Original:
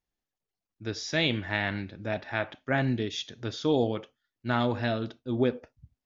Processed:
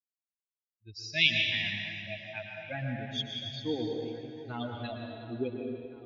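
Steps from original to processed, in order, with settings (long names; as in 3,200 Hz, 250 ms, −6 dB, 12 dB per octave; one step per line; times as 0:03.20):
spectral dynamics exaggerated over time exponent 3
high shelf with overshoot 1,900 Hz +10.5 dB, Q 3
harmonic generator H 3 −44 dB, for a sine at −3 dBFS
high-frequency loss of the air 190 metres
on a send: echo with a time of its own for lows and highs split 2,100 Hz, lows 710 ms, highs 304 ms, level −15 dB
on the sum: dense smooth reverb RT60 2 s, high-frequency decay 0.85×, pre-delay 105 ms, DRR 1 dB
level −3.5 dB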